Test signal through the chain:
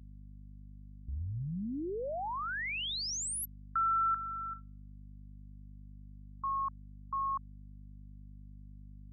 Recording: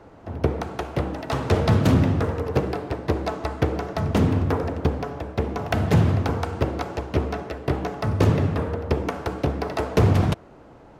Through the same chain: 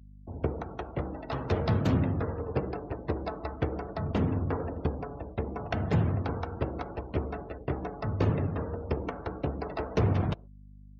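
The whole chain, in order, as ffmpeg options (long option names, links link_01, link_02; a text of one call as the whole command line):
ffmpeg -i in.wav -af "agate=range=-25dB:threshold=-36dB:ratio=16:detection=peak,afftdn=noise_reduction=30:noise_floor=-38,aeval=exprs='val(0)+0.00891*(sin(2*PI*50*n/s)+sin(2*PI*2*50*n/s)/2+sin(2*PI*3*50*n/s)/3+sin(2*PI*4*50*n/s)/4+sin(2*PI*5*50*n/s)/5)':channel_layout=same,volume=-8dB" out.wav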